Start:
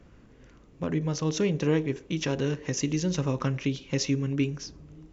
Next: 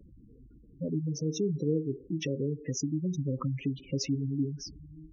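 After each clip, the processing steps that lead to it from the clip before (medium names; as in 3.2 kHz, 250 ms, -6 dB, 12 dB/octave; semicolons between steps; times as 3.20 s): spectral gate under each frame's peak -10 dB strong; in parallel at -0.5 dB: compression, threshold -34 dBFS, peak gain reduction 13.5 dB; on the sum: trim -5.5 dB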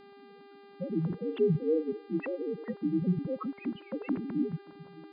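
formants replaced by sine waves; mains buzz 400 Hz, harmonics 12, -54 dBFS -7 dB/octave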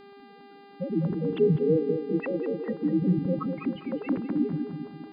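filtered feedback delay 201 ms, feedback 49%, low-pass 1.3 kHz, level -6 dB; trim +4 dB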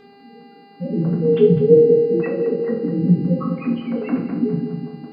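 reverberation RT60 0.50 s, pre-delay 3 ms, DRR -4 dB; trim +1.5 dB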